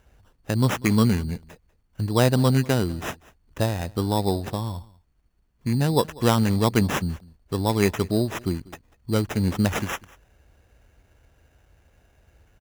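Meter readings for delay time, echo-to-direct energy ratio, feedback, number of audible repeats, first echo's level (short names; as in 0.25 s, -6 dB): 0.193 s, -22.5 dB, no steady repeat, 1, -22.5 dB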